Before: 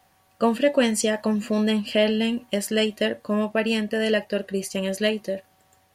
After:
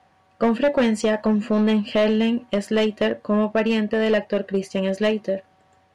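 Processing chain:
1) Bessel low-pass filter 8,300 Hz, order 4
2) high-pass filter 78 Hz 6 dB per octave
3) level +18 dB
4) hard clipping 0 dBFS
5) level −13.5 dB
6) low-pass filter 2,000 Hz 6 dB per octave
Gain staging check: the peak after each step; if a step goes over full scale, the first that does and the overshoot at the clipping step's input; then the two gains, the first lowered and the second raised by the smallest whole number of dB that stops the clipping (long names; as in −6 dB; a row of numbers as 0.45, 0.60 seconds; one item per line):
−8.0, −8.5, +9.5, 0.0, −13.5, −13.5 dBFS
step 3, 9.5 dB
step 3 +8 dB, step 5 −3.5 dB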